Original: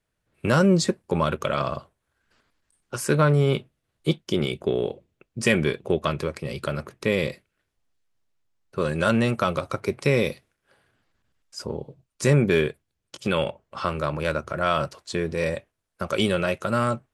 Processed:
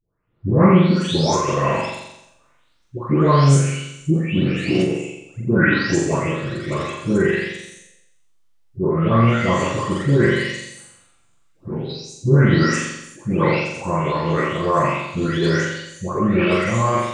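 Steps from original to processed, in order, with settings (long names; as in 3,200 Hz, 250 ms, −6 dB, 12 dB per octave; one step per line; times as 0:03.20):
every frequency bin delayed by itself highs late, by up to 525 ms
flutter between parallel walls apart 7.4 metres, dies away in 0.88 s
formants moved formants −4 semitones
level +5 dB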